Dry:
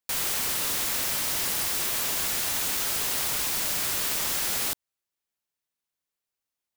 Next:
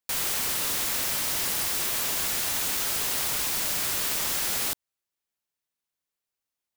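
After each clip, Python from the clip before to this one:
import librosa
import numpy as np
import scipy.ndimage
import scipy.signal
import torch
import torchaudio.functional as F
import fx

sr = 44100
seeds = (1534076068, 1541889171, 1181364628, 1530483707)

y = x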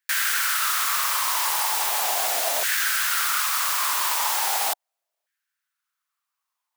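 y = fx.low_shelf(x, sr, hz=270.0, db=9.0)
y = fx.filter_lfo_highpass(y, sr, shape='saw_down', hz=0.38, low_hz=620.0, high_hz=1700.0, q=5.1)
y = y * librosa.db_to_amplitude(2.5)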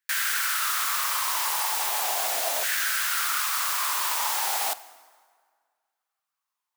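y = fx.rev_plate(x, sr, seeds[0], rt60_s=1.8, hf_ratio=0.7, predelay_ms=0, drr_db=15.0)
y = y * librosa.db_to_amplitude(-3.0)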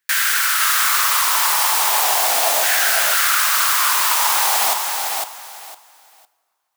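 y = fx.echo_feedback(x, sr, ms=506, feedback_pct=21, wet_db=-4.5)
y = y * librosa.db_to_amplitude(8.5)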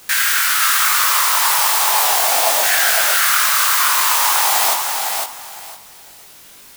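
y = fx.dmg_noise_colour(x, sr, seeds[1], colour='white', level_db=-44.0)
y = fx.doubler(y, sr, ms=21.0, db=-3)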